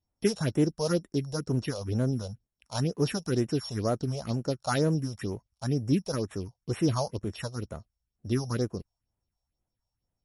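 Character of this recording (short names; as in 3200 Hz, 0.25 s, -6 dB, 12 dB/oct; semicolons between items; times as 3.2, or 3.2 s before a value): a buzz of ramps at a fixed pitch in blocks of 8 samples; phasing stages 4, 2.1 Hz, lowest notch 280–4900 Hz; MP3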